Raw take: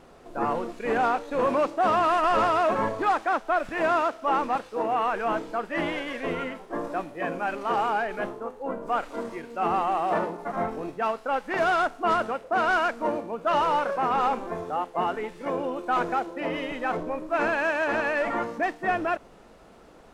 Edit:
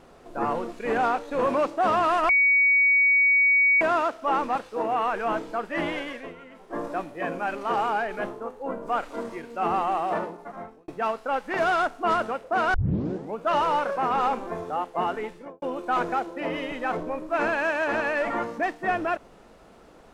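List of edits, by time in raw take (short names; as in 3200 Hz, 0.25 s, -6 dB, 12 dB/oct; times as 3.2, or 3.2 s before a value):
2.29–3.81 bleep 2250 Hz -16 dBFS
6.03–6.79 dip -14.5 dB, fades 0.30 s
9.95–10.88 fade out
12.74 tape start 0.63 s
15.26–15.62 studio fade out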